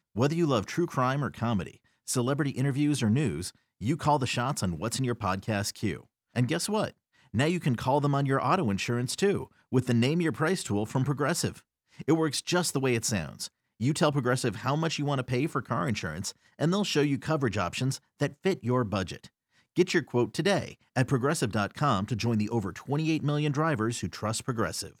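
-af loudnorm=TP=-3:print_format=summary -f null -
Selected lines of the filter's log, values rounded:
Input Integrated:    -28.8 LUFS
Input True Peak:     -10.6 dBTP
Input LRA:             1.9 LU
Input Threshold:     -39.0 LUFS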